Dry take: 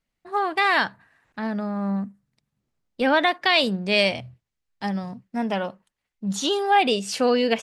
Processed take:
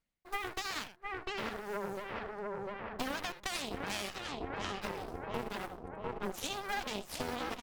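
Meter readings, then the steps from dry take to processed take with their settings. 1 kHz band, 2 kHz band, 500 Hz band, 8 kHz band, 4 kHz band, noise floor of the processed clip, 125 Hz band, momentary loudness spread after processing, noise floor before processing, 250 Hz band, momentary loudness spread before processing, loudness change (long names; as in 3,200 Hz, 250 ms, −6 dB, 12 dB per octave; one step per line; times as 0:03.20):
−15.5 dB, −15.5 dB, −15.5 dB, −8.0 dB, −15.0 dB, −58 dBFS, −13.5 dB, 4 LU, −83 dBFS, −17.5 dB, 13 LU, −16.5 dB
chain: one scale factor per block 5 bits
feedback echo with a low-pass in the loop 699 ms, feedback 64%, low-pass 1,300 Hz, level −5 dB
in parallel at +1 dB: brickwall limiter −15 dBFS, peak gain reduction 9 dB
on the sum: single-tap delay 79 ms −11.5 dB
pitch vibrato 13 Hz 50 cents
reversed playback
upward compression, threshold −23 dBFS
reversed playback
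harmonic generator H 4 −13 dB, 7 −16 dB, 8 −23 dB, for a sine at 0.5 dBFS
downward compressor 6 to 1, threshold −37 dBFS, peak gain reduction 26 dB
level +1 dB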